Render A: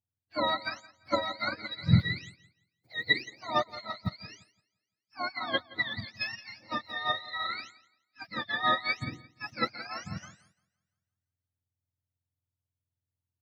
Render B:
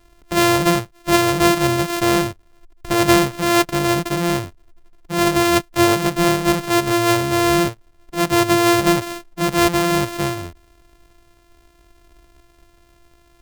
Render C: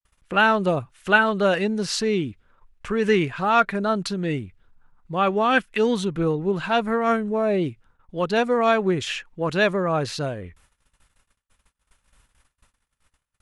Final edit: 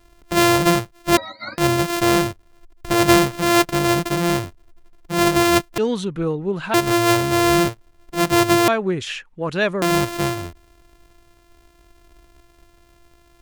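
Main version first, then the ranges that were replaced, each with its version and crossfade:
B
1.17–1.58 from A
5.78–6.74 from C
8.68–9.82 from C

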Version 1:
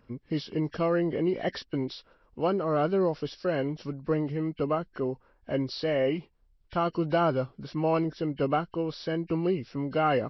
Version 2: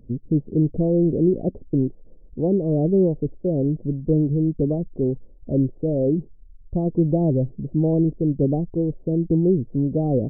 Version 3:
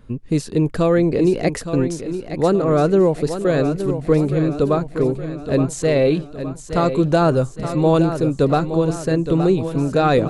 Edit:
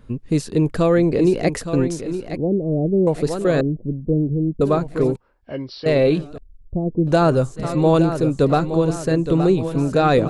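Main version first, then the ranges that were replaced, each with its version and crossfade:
3
2.37–3.07 from 2
3.61–4.61 from 2
5.16–5.86 from 1
6.38–7.07 from 2

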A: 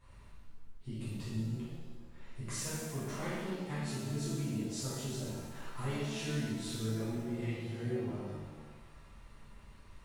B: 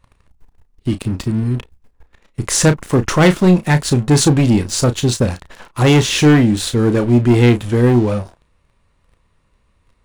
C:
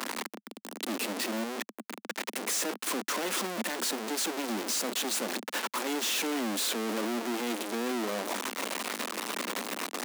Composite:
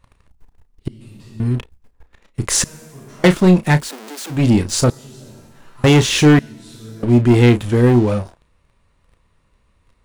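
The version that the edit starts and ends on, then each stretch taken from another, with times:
B
0.88–1.4 from A
2.64–3.24 from A
3.82–4.37 from C, crossfade 0.16 s
4.9–5.84 from A
6.39–7.03 from A

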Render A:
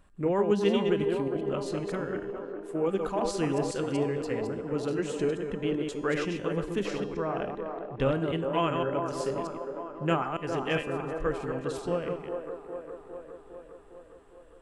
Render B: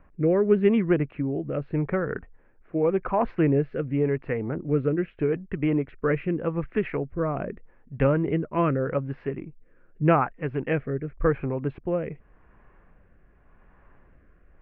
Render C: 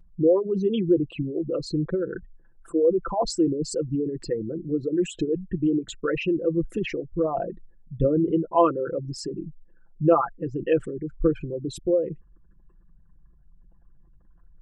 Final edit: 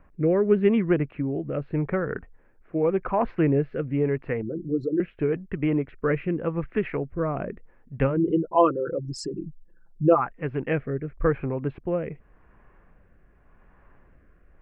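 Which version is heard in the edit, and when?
B
4.42–5 from C
8.12–10.22 from C, crossfade 0.16 s
not used: A

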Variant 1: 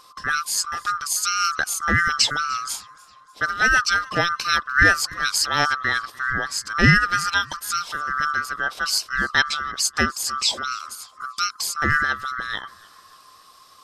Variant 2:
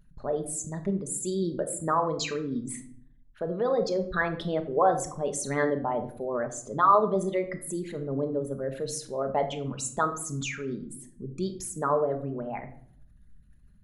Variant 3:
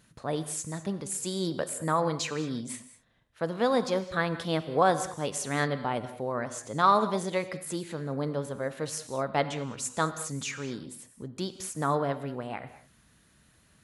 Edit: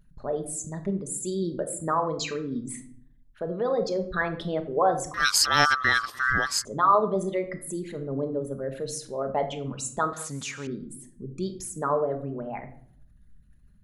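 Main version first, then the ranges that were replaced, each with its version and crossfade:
2
5.14–6.65 from 1
10.13–10.67 from 3

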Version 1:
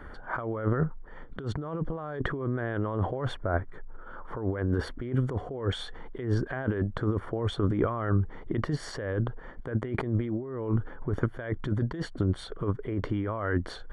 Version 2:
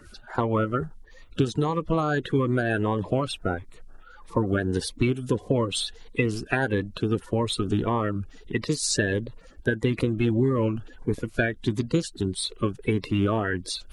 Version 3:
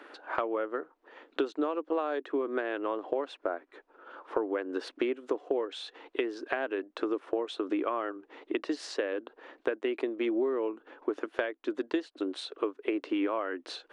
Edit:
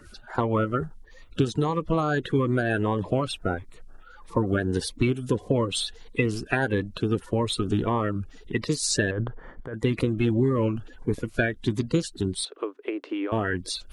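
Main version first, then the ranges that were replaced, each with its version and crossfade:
2
9.11–9.74 from 1
12.45–13.32 from 3

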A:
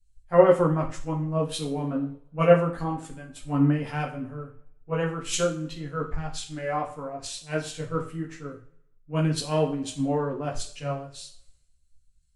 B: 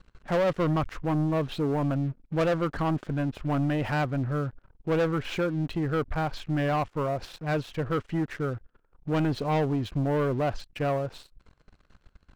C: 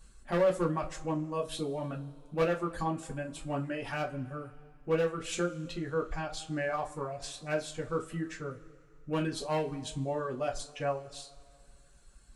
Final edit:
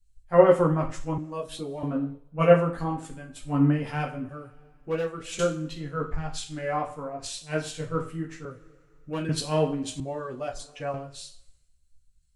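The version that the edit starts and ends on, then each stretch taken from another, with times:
A
1.18–1.83 from C
4.29–5.39 from C
8.45–9.29 from C
10–10.94 from C
not used: B

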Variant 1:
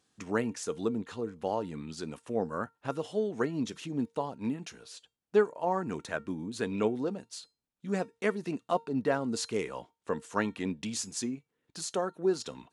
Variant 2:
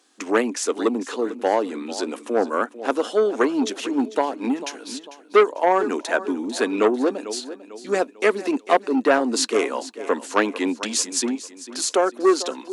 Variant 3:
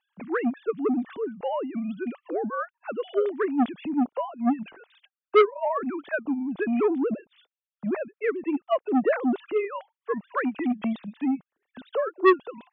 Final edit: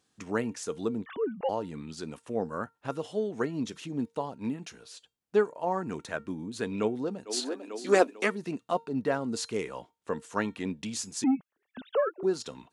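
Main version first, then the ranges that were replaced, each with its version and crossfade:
1
1.06–1.49 from 3
7.32–8.24 from 2, crossfade 0.16 s
11.24–12.23 from 3

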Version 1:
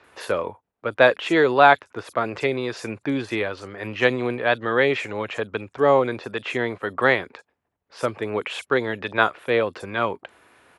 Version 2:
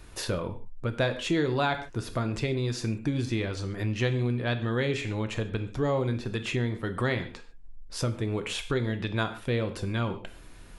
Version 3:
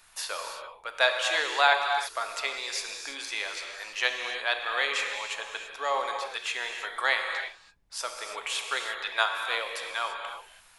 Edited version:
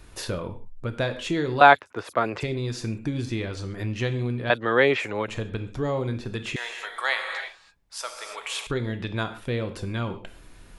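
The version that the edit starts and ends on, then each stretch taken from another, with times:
2
1.61–2.43 from 1
4.5–5.28 from 1
6.56–8.67 from 3

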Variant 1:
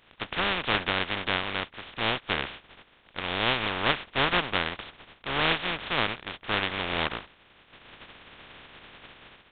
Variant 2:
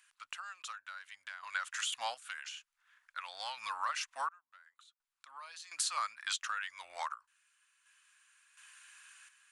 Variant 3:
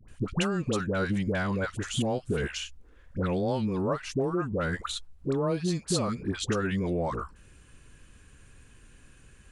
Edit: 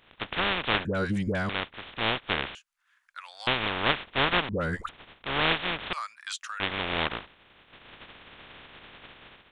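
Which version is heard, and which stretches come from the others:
1
0.85–1.49 from 3
2.55–3.47 from 2
4.49–4.89 from 3
5.93–6.6 from 2

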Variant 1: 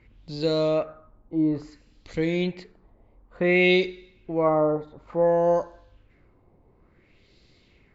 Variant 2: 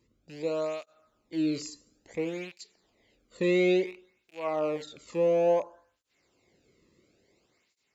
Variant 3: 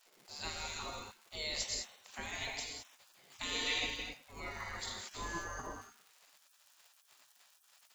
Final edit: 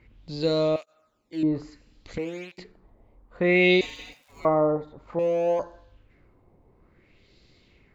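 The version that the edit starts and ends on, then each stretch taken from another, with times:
1
0.76–1.43 from 2
2.18–2.58 from 2
3.81–4.45 from 3
5.19–5.59 from 2

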